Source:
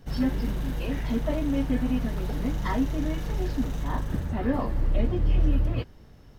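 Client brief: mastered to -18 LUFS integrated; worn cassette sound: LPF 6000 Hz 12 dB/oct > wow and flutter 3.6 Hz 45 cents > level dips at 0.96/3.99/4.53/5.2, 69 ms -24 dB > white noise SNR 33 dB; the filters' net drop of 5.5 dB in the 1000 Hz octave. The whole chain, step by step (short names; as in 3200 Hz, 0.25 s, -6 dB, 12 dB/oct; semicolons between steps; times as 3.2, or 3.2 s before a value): LPF 6000 Hz 12 dB/oct; bell 1000 Hz -7 dB; wow and flutter 3.6 Hz 45 cents; level dips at 0.96/3.99/4.53/5.2, 69 ms -24 dB; white noise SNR 33 dB; gain +11 dB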